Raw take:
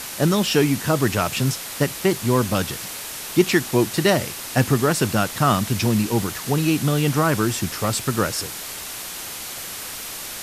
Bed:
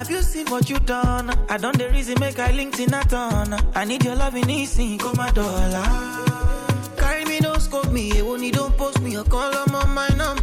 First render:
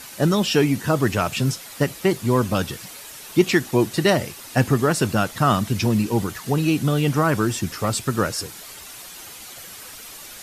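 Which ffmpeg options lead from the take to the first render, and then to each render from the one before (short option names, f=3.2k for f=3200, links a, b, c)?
-af "afftdn=nr=9:nf=-33"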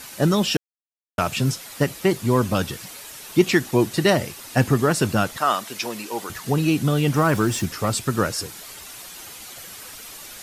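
-filter_complex "[0:a]asettb=1/sr,asplit=3[a][b][c];[a]atrim=end=5.374[d];[b]atrim=start=5.37:end=6.3,asetpts=PTS-STARTPTS,afade=t=in:d=0.004:c=qsin,afade=t=out:st=0.926:d=0.004:c=qsin,highpass=530[e];[c]atrim=start=6.296[f];[d][e]acrossfade=d=0.004:c1=hsin:c2=qsin[g];[g][f]acrossfade=d=0.004:c1=qsin:c2=hsin,asettb=1/sr,asplit=3[h][i][j];[h]atrim=end=7.144[k];[i]atrim=start=7.14:end=7.66,asetpts=PTS-STARTPTS,afade=t=in:d=0.004:c=qsin,afade=t=out:st=0.516:d=0.004:c=qsin,aeval=exprs='val(0)+0.5*0.0188*sgn(val(0))':c=same[l];[j]atrim=start=7.656[m];[k][l]acrossfade=d=0.004:c1=hsin:c2=qsin[n];[n][m]acrossfade=d=0.004:c1=qsin:c2=hsin,asplit=3[o][p][q];[o]atrim=end=0.57,asetpts=PTS-STARTPTS,afade=t=out:st=0.566:d=0.004:c=hsin[r];[p]atrim=start=0.57:end=1.18,asetpts=PTS-STARTPTS,volume=0[s];[q]atrim=start=1.18,asetpts=PTS-STARTPTS,afade=t=in:d=0.004:c=hsin[t];[r][s][t]concat=n=3:v=0:a=1"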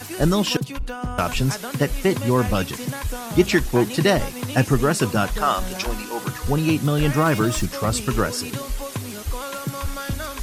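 -filter_complex "[1:a]volume=-9dB[a];[0:a][a]amix=inputs=2:normalize=0"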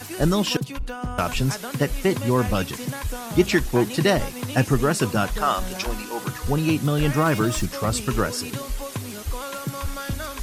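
-af "volume=-1.5dB"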